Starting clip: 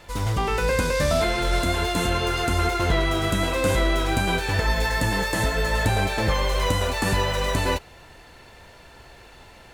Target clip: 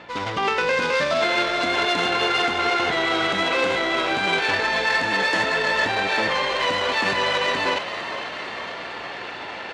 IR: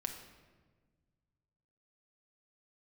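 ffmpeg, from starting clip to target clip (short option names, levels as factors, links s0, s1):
-filter_complex "[0:a]areverse,acompressor=mode=upward:threshold=0.0562:ratio=2.5,areverse,alimiter=limit=0.158:level=0:latency=1:release=47,adynamicsmooth=sensitivity=2:basefreq=2000,crystalizer=i=7:c=0,aeval=exprs='val(0)+0.00794*(sin(2*PI*60*n/s)+sin(2*PI*2*60*n/s)/2+sin(2*PI*3*60*n/s)/3+sin(2*PI*4*60*n/s)/4+sin(2*PI*5*60*n/s)/5)':c=same,highpass=260,lowpass=3900,asplit=2[s0][s1];[s1]asplit=8[s2][s3][s4][s5][s6][s7][s8][s9];[s2]adelay=454,afreqshift=57,volume=0.282[s10];[s3]adelay=908,afreqshift=114,volume=0.178[s11];[s4]adelay=1362,afreqshift=171,volume=0.112[s12];[s5]adelay=1816,afreqshift=228,volume=0.0708[s13];[s6]adelay=2270,afreqshift=285,volume=0.0442[s14];[s7]adelay=2724,afreqshift=342,volume=0.0279[s15];[s8]adelay=3178,afreqshift=399,volume=0.0176[s16];[s9]adelay=3632,afreqshift=456,volume=0.0111[s17];[s10][s11][s12][s13][s14][s15][s16][s17]amix=inputs=8:normalize=0[s18];[s0][s18]amix=inputs=2:normalize=0,volume=1.33"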